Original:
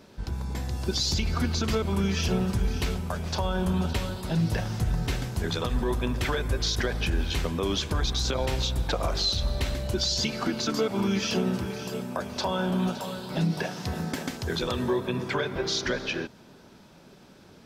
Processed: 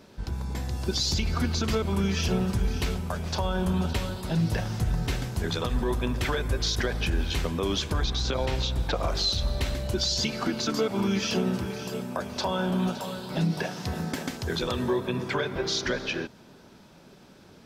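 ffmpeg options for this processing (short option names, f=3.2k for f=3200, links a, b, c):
-filter_complex "[0:a]asettb=1/sr,asplit=3[a][b][c];[a]atrim=end=7.944[d];[b]atrim=start=7.94:end=9.07,asetpts=PTS-STARTPTS,afade=t=in:d=0.004:c=qsin,afade=t=out:st=1.126:d=0.004:c=qsin,acrossover=split=5900[e][f];[f]acompressor=threshold=-52dB:ratio=4:attack=1:release=60[g];[e][g]amix=inputs=2:normalize=0[h];[c]atrim=start=9.066[i];[d][h]acrossfade=d=0.004:c1=hsin:c2=qsin[j];[j][i]acrossfade=d=0.004:c1=qsin:c2=hsin"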